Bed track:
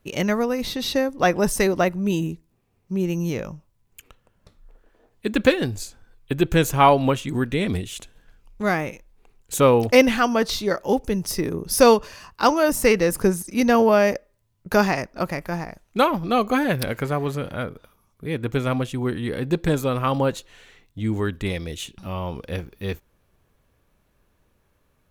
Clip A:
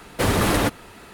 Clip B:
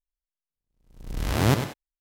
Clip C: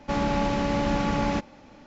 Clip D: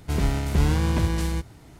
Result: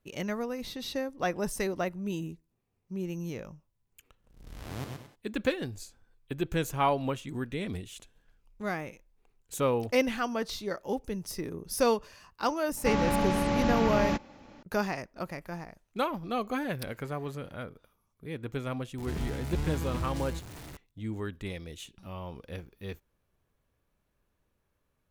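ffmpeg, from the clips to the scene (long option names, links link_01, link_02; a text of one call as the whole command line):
ffmpeg -i bed.wav -i cue0.wav -i cue1.wav -i cue2.wav -i cue3.wav -filter_complex "[0:a]volume=-11.5dB[link_01];[2:a]aecho=1:1:123:0.562[link_02];[4:a]aeval=exprs='val(0)+0.5*0.0422*sgn(val(0))':channel_layout=same[link_03];[link_02]atrim=end=2,asetpts=PTS-STARTPTS,volume=-18dB,afade=type=in:duration=0.004:curve=hsin,afade=type=out:start_time=1.996:duration=0.004:curve=hsin,adelay=3300[link_04];[3:a]atrim=end=1.86,asetpts=PTS-STARTPTS,volume=-2.5dB,afade=type=in:duration=0.004:curve=hsin,afade=type=out:start_time=1.856:duration=0.004:curve=hsin,adelay=12770[link_05];[link_03]atrim=end=1.79,asetpts=PTS-STARTPTS,volume=-13dB,afade=type=in:duration=0.004:curve=hsin,afade=type=out:start_time=1.786:duration=0.004:curve=hsin,adelay=18980[link_06];[link_01][link_04][link_05][link_06]amix=inputs=4:normalize=0" out.wav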